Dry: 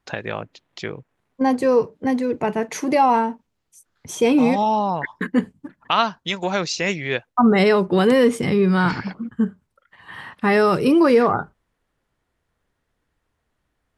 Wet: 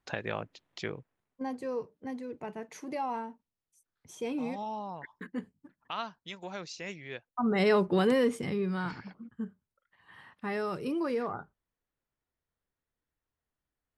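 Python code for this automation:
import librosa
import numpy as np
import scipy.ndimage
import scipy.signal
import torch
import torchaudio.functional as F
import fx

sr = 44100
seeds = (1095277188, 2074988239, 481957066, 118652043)

y = fx.gain(x, sr, db=fx.line((0.94, -7.0), (1.49, -18.0), (7.28, -18.0), (7.76, -7.0), (8.97, -17.0)))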